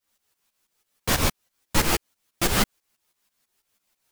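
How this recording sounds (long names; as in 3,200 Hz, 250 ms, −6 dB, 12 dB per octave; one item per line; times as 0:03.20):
a quantiser's noise floor 12 bits, dither triangular
tremolo saw up 6.1 Hz, depth 85%
a shimmering, thickened sound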